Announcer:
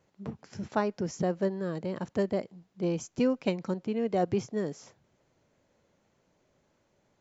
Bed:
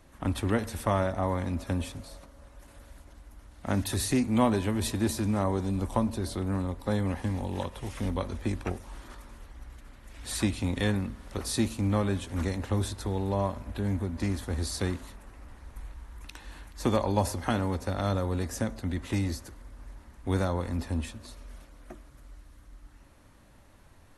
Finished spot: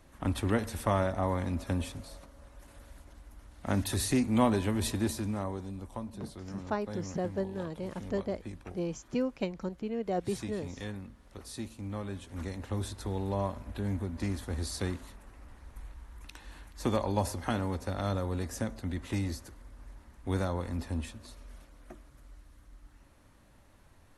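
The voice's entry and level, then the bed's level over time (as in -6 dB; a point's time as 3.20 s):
5.95 s, -4.5 dB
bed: 4.92 s -1.5 dB
5.86 s -12.5 dB
11.76 s -12.5 dB
13.12 s -3.5 dB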